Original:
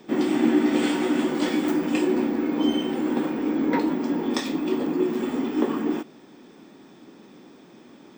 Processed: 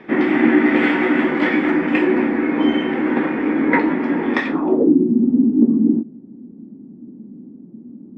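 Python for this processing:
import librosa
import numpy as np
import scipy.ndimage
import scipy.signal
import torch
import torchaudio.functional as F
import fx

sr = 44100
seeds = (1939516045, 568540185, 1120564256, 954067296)

y = fx.filter_sweep_lowpass(x, sr, from_hz=2000.0, to_hz=230.0, start_s=4.46, end_s=4.99, q=3.3)
y = y * librosa.db_to_amplitude(5.5)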